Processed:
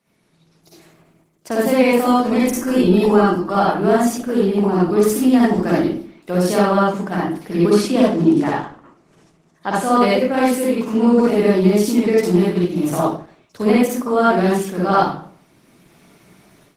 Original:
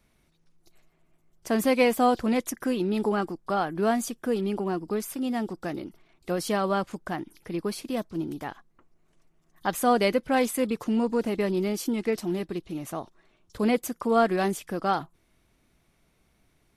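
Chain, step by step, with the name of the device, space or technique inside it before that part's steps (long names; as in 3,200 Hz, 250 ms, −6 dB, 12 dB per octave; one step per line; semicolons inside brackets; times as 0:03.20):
0:07.69–0:09.91: low-pass filter 10,000 Hz 24 dB per octave
0:12.11–0:12.64: parametric band 300 Hz −5 dB 0.4 octaves
far-field microphone of a smart speaker (convolution reverb RT60 0.50 s, pre-delay 47 ms, DRR −5.5 dB; high-pass filter 130 Hz 24 dB per octave; automatic gain control gain up to 14.5 dB; level −1 dB; Opus 16 kbit/s 48,000 Hz)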